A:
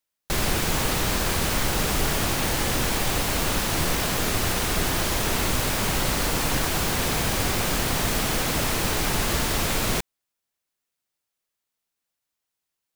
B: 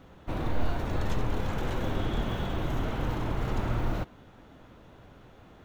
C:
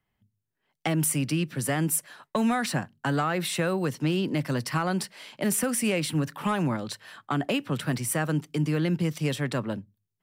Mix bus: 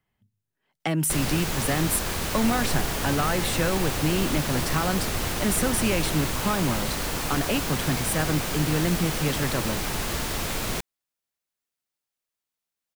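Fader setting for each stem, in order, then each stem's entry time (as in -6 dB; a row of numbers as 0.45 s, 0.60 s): -4.5 dB, -5.0 dB, +0.5 dB; 0.80 s, 2.15 s, 0.00 s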